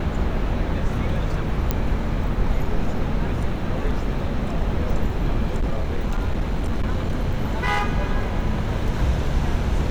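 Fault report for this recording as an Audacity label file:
1.710000	1.710000	pop -7 dBFS
5.560000	7.850000	clipped -17 dBFS

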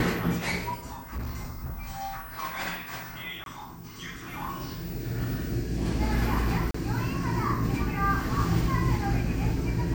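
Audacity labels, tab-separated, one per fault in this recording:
1.130000	1.760000	clipped -29.5 dBFS
3.440000	3.460000	dropout 22 ms
6.710000	6.740000	dropout 34 ms

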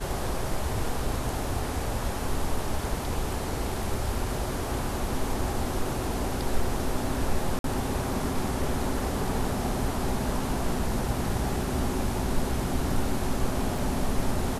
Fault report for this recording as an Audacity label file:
7.590000	7.640000	dropout 52 ms
13.780000	13.780000	dropout 2.7 ms

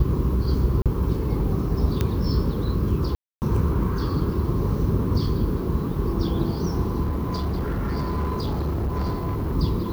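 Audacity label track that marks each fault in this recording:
0.820000	0.860000	dropout 37 ms
2.010000	2.010000	pop -9 dBFS
3.150000	3.420000	dropout 269 ms
7.040000	9.550000	clipped -21.5 dBFS

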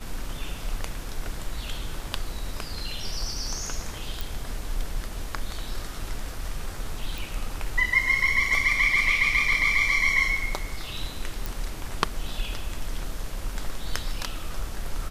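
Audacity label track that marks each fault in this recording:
4.210000	4.210000	pop
7.180000	7.180000	pop
11.460000	11.460000	pop

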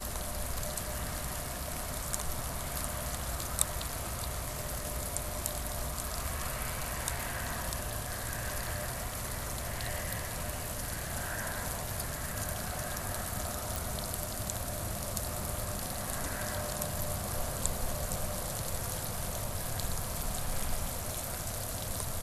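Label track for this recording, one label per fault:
13.760000	13.760000	pop

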